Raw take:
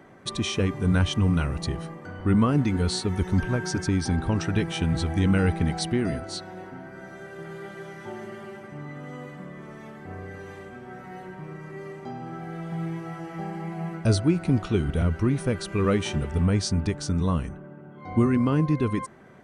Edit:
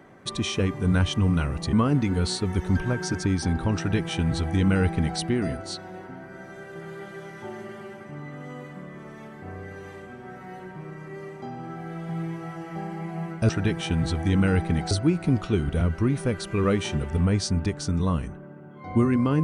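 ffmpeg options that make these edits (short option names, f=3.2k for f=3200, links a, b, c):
-filter_complex "[0:a]asplit=4[a][b][c][d];[a]atrim=end=1.732[e];[b]atrim=start=2.358:end=14.122[f];[c]atrim=start=4.398:end=5.822[g];[d]atrim=start=14.118[h];[e][f]acrossfade=d=0.004:c1=hsin:c2=hsin[i];[i][g]acrossfade=d=0.004:c1=hsin:c2=hsin[j];[j][h]acrossfade=d=0.004:c1=hsin:c2=hsin"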